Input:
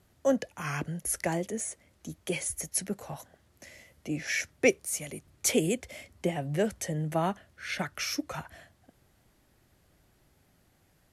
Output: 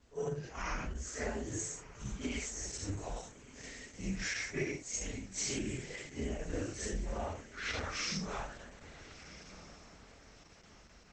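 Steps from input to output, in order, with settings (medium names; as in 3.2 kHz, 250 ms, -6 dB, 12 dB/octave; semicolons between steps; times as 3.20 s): phase randomisation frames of 200 ms; 1.71–2.35 s: gate with hold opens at -54 dBFS; 3.15–4.32 s: treble shelf 5.1 kHz -> 3 kHz +4 dB; 4.91–5.59 s: comb 5.6 ms, depth 86%; compression 16:1, threshold -34 dBFS, peak gain reduction 16 dB; frequency shift -110 Hz; echo that smears into a reverb 1380 ms, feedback 46%, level -14.5 dB; trim +1 dB; Opus 10 kbps 48 kHz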